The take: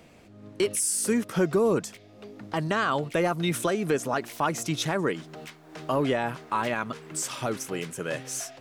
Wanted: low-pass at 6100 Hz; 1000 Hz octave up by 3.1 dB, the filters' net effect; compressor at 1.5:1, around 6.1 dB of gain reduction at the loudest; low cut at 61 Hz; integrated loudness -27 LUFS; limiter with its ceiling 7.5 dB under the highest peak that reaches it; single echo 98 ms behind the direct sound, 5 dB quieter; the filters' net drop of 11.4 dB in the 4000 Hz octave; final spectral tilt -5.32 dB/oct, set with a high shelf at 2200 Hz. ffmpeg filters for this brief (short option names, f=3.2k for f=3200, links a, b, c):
-af "highpass=61,lowpass=6.1k,equalizer=f=1k:t=o:g=6,highshelf=f=2.2k:g=-8.5,equalizer=f=4k:t=o:g=-7,acompressor=threshold=-36dB:ratio=1.5,alimiter=limit=-23.5dB:level=0:latency=1,aecho=1:1:98:0.562,volume=7.5dB"